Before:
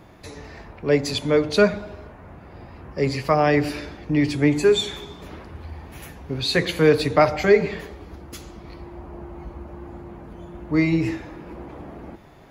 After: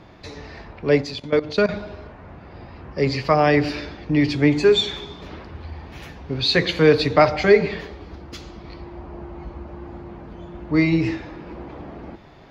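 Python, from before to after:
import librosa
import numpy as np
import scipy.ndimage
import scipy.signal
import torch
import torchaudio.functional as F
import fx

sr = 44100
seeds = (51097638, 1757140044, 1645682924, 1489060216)

y = fx.level_steps(x, sr, step_db=17, at=(1.02, 1.69))
y = fx.high_shelf_res(y, sr, hz=6900.0, db=-13.5, q=1.5)
y = y * librosa.db_to_amplitude(1.5)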